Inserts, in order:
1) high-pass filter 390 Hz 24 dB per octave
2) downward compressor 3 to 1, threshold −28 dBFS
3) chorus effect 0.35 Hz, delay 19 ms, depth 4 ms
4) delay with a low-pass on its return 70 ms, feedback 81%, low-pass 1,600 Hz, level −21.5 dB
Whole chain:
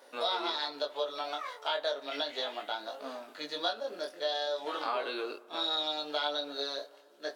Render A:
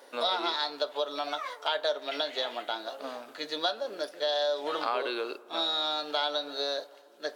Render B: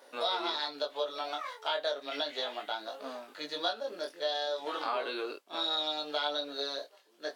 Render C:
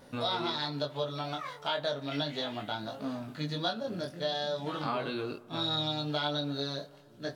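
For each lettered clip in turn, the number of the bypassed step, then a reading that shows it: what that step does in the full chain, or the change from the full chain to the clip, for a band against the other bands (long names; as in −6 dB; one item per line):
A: 3, change in integrated loudness +3.0 LU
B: 4, echo-to-direct ratio −19.5 dB to none audible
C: 1, 250 Hz band +10.0 dB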